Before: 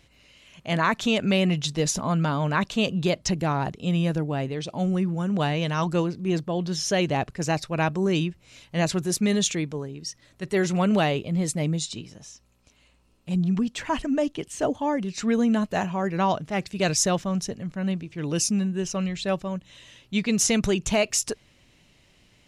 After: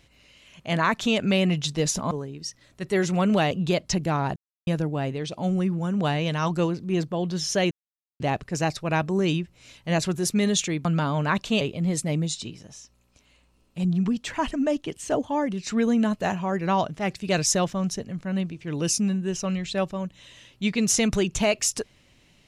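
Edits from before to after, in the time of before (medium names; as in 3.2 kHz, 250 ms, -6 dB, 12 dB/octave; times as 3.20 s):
2.11–2.87 s: swap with 9.72–11.12 s
3.72–4.03 s: mute
7.07 s: insert silence 0.49 s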